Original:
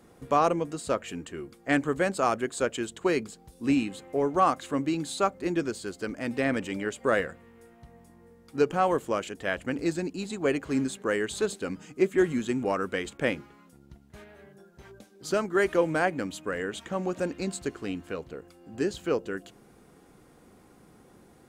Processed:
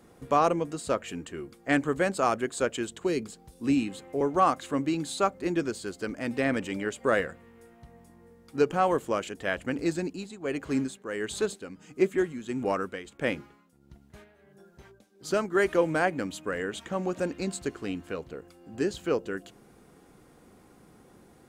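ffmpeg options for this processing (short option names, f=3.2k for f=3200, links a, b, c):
-filter_complex "[0:a]asettb=1/sr,asplit=3[a][b][c];[a]atrim=end=2.874[d];[b]atrim=start=2.87:end=4.21,asetpts=PTS-STARTPTS,afade=t=in:d=0.004:c=qsin,afade=t=out:st=1.336:d=0.004:c=qsin,acrossover=split=490|3000[e][f][g];[f]acompressor=threshold=-39dB:ratio=6:attack=3.2:release=140:knee=2.83:detection=peak[h];[e][h][g]amix=inputs=3:normalize=0[i];[c]atrim=start=4.206[j];[d][i]acrossfade=d=0.004:c1=hsin:c2=qsin[k];[k][j]acrossfade=d=0.004:c1=qsin:c2=hsin,asettb=1/sr,asplit=3[l][m][n];[l]atrim=end=10.044[o];[m]atrim=start=10.04:end=15.52,asetpts=PTS-STARTPTS,afade=t=in:d=0.004:c=qsin,afade=t=out:st=5.476:d=0.004:c=qsin,tremolo=f=1.5:d=0.66[p];[n]atrim=start=15.516[q];[o][p]acrossfade=d=0.004:c1=hsin:c2=qsin[r];[r][q]acrossfade=d=0.004:c1=qsin:c2=hsin"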